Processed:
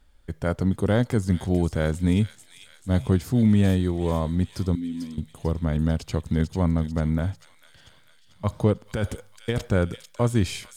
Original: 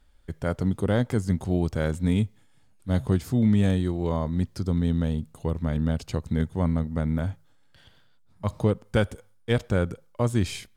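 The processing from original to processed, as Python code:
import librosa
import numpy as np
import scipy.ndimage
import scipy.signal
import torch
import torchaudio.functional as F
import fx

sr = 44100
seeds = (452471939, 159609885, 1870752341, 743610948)

p1 = fx.vowel_filter(x, sr, vowel='i', at=(4.75, 5.18))
p2 = fx.over_compress(p1, sr, threshold_db=-26.0, ratio=-1.0, at=(8.86, 9.7))
p3 = p2 + fx.echo_wet_highpass(p2, sr, ms=444, feedback_pct=58, hz=3100.0, wet_db=-5.5, dry=0)
y = p3 * 10.0 ** (2.0 / 20.0)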